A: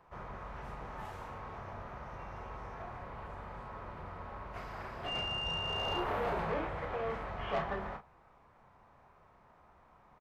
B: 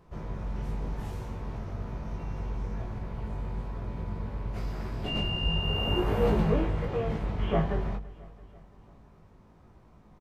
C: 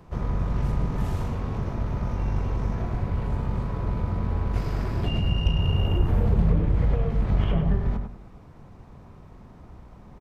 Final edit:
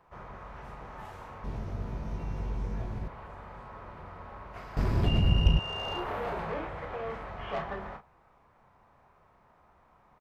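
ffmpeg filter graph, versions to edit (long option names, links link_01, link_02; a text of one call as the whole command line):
ffmpeg -i take0.wav -i take1.wav -i take2.wav -filter_complex "[0:a]asplit=3[link_01][link_02][link_03];[link_01]atrim=end=1.442[link_04];[1:a]atrim=start=1.438:end=3.082[link_05];[link_02]atrim=start=3.078:end=4.772[link_06];[2:a]atrim=start=4.768:end=5.592[link_07];[link_03]atrim=start=5.588[link_08];[link_04][link_05]acrossfade=duration=0.004:curve1=hsin:curve2=hsin[link_09];[link_09][link_06]acrossfade=duration=0.004:curve1=hsin:curve2=hsin[link_10];[link_10][link_07]acrossfade=duration=0.004:curve1=hsin:curve2=hsin[link_11];[link_11][link_08]acrossfade=duration=0.004:curve1=hsin:curve2=hsin" out.wav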